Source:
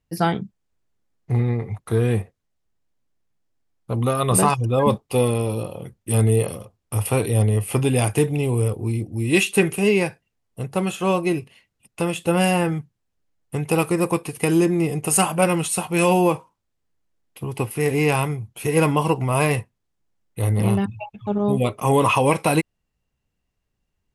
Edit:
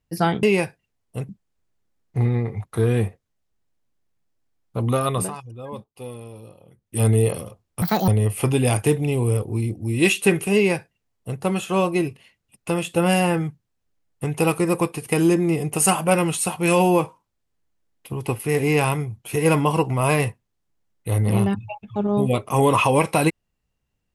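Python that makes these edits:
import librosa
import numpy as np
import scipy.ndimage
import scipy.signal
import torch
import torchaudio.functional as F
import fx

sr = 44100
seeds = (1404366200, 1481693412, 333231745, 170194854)

y = fx.edit(x, sr, fx.fade_down_up(start_s=4.19, length_s=1.98, db=-16.5, fade_s=0.26),
    fx.speed_span(start_s=6.96, length_s=0.43, speed=1.66),
    fx.duplicate(start_s=9.86, length_s=0.86, to_s=0.43), tone=tone)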